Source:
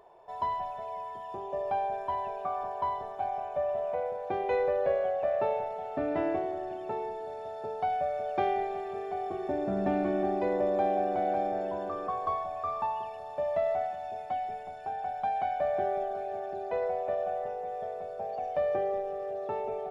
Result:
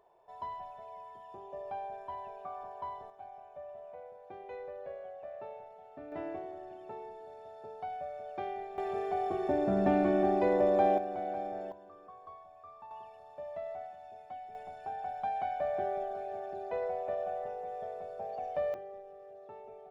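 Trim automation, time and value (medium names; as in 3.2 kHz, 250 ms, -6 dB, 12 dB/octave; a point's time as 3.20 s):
-9.5 dB
from 3.10 s -16 dB
from 6.12 s -10 dB
from 8.78 s +1.5 dB
from 10.98 s -7.5 dB
from 11.72 s -19 dB
from 12.91 s -12 dB
from 14.55 s -4 dB
from 18.74 s -15.5 dB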